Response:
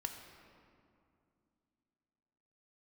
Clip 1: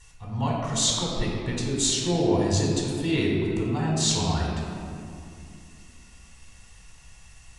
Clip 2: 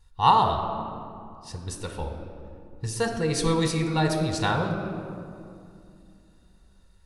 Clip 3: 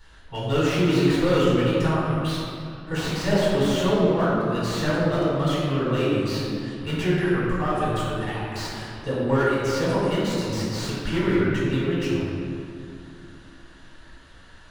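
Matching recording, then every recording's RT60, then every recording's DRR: 2; 2.4, 2.5, 2.4 seconds; −3.0, 4.0, −8.5 decibels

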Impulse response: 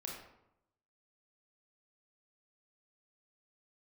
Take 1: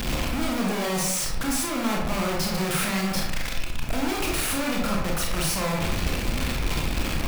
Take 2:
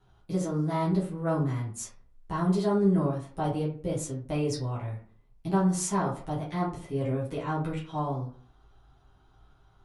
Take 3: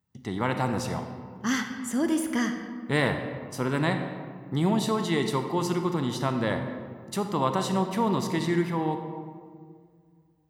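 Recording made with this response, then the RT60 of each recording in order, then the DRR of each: 1; 0.80, 0.45, 2.0 seconds; −2.0, −7.5, 5.5 decibels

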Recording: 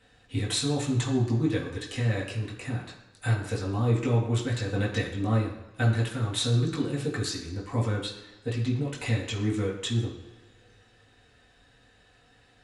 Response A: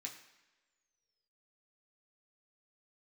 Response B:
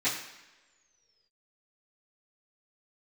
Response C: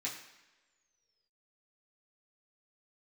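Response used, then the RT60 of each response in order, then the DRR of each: C; non-exponential decay, non-exponential decay, non-exponential decay; −1.0, −16.0, −6.5 decibels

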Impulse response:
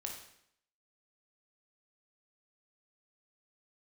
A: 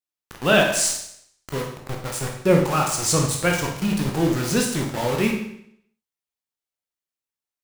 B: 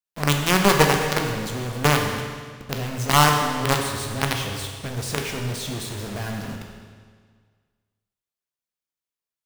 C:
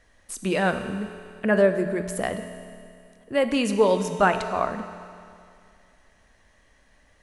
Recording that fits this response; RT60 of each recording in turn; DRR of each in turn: A; 0.70, 1.8, 2.4 seconds; 0.5, 1.5, 7.5 decibels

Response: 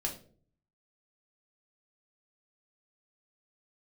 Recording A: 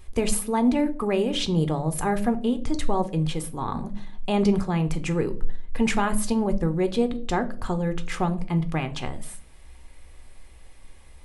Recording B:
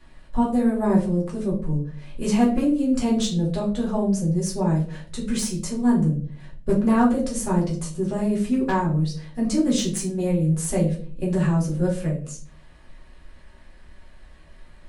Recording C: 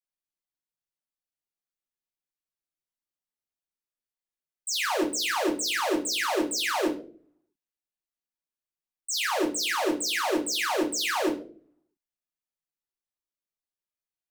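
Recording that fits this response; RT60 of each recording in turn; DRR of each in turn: C; 0.50, 0.50, 0.50 seconds; 9.0, −5.5, −0.5 decibels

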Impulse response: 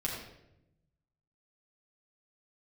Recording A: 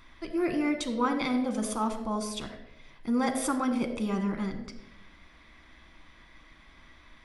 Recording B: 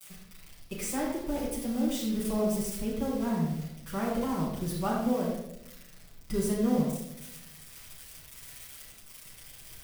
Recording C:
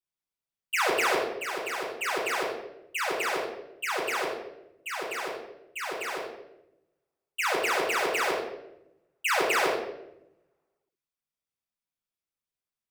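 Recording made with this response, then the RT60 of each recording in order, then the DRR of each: C; 0.85, 0.85, 0.85 seconds; 5.5, −9.0, −4.5 decibels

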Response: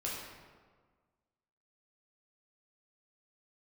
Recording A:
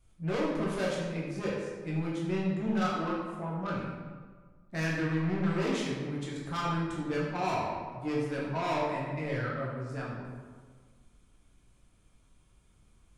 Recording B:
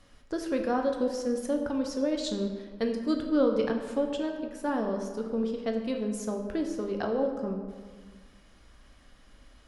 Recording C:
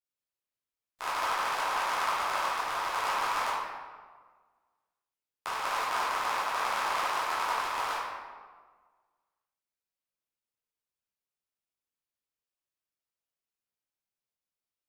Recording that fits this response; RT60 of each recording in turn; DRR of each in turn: A; 1.6, 1.6, 1.6 seconds; −5.5, 3.0, −10.5 decibels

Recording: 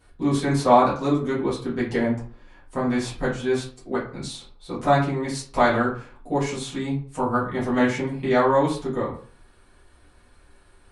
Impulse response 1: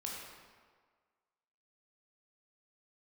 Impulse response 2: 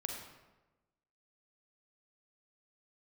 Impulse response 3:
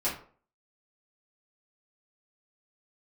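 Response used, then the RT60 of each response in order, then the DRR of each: 3; 1.6, 1.1, 0.45 seconds; −3.0, 1.5, −10.0 decibels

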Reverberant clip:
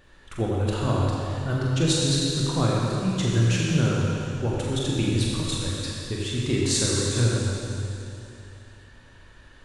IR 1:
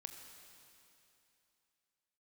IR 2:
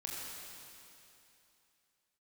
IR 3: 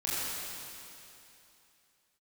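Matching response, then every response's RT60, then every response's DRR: 2; 2.9, 2.9, 2.9 seconds; 4.5, −4.5, −10.0 decibels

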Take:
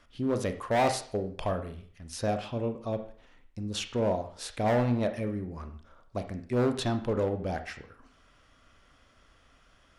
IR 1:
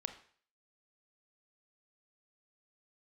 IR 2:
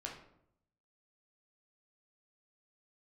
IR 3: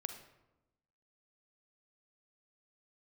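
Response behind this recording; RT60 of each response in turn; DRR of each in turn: 1; 0.50, 0.75, 1.0 seconds; 7.5, −1.5, 7.0 decibels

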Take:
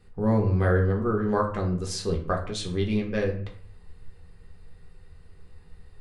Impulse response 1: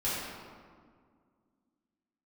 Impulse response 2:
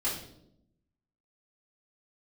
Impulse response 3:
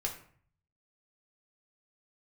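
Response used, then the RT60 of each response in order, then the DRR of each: 3; 1.9, 0.75, 0.50 seconds; −11.0, −7.5, −0.5 decibels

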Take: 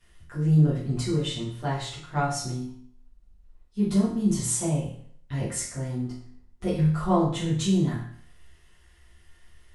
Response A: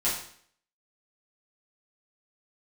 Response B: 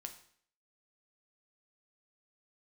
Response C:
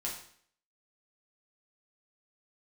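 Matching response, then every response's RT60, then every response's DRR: A; 0.60, 0.60, 0.60 seconds; −10.0, 5.0, −4.0 decibels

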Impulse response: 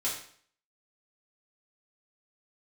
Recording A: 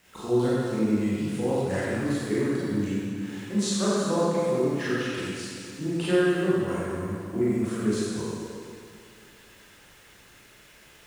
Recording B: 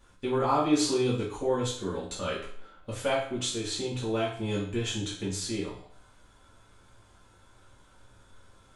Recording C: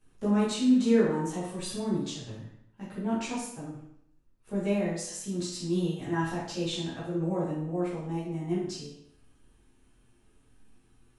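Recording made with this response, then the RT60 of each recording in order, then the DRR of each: B; 2.3, 0.55, 0.70 seconds; −10.0, −7.5, −10.5 decibels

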